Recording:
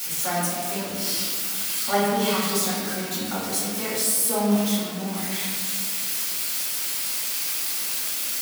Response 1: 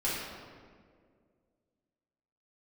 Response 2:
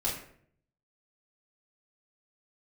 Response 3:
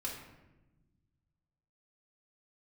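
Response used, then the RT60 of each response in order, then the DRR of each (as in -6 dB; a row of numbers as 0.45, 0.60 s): 1; 2.0, 0.60, 1.1 s; -9.5, -7.0, -4.5 dB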